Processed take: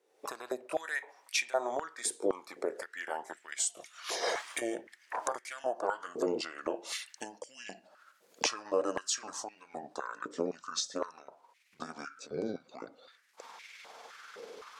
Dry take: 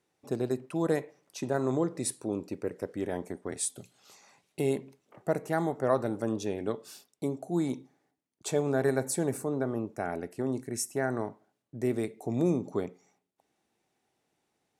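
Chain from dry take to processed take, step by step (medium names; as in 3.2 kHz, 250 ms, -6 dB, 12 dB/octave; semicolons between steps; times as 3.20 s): pitch bend over the whole clip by -9.5 st starting unshifted; recorder AGC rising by 45 dB/s; step-sequenced high-pass 3.9 Hz 460–2200 Hz; trim -2.5 dB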